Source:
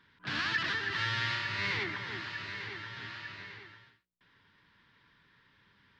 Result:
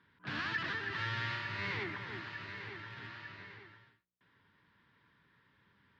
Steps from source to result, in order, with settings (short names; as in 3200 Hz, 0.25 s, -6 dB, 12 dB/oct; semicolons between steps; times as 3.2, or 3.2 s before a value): rattling part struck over -47 dBFS, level -37 dBFS; HPF 59 Hz; high shelf 2800 Hz -11 dB; gain -1.5 dB